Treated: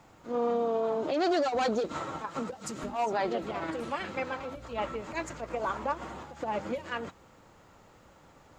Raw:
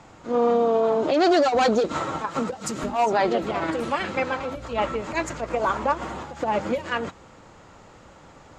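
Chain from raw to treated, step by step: bit crusher 11-bit; trim -8.5 dB

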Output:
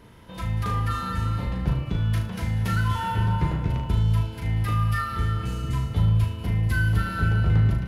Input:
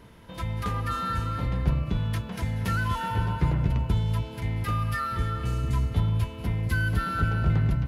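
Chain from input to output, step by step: flutter echo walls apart 6.4 m, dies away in 0.41 s

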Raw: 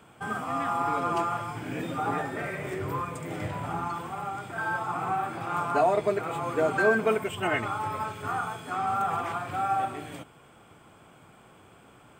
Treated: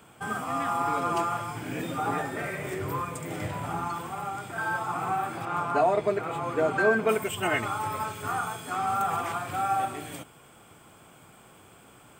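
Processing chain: treble shelf 5.6 kHz +8 dB, from 5.45 s -3 dB, from 7.09 s +11.5 dB

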